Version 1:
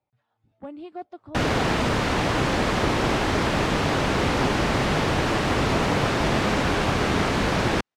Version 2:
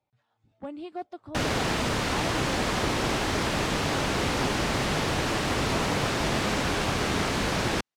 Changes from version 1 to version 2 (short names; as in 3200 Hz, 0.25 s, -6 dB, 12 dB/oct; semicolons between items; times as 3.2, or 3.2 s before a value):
background -5.0 dB; master: add high shelf 4100 Hz +9 dB